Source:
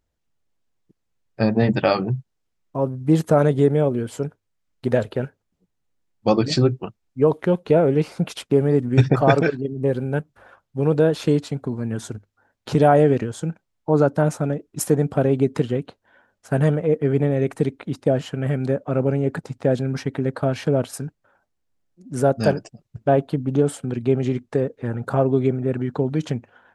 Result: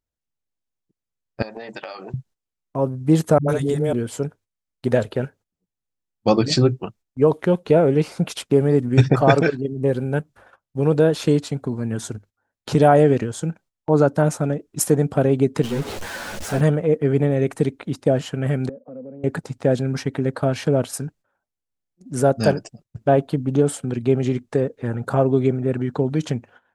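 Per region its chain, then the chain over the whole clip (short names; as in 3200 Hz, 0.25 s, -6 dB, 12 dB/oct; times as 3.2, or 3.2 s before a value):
1.42–2.14 HPF 550 Hz + compressor 16:1, threshold -30 dBFS
3.38–3.93 level quantiser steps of 10 dB + high shelf 4100 Hz +11 dB + dispersion highs, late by 0.106 s, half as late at 340 Hz
15.63–16.61 zero-crossing step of -23.5 dBFS + high shelf 5200 Hz -5 dB + ensemble effect
18.69–19.24 double band-pass 350 Hz, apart 0.99 oct + compressor 2.5:1, threshold -38 dBFS
whole clip: gate -47 dBFS, range -13 dB; bell 8400 Hz +4 dB 1.7 oct; gain +1 dB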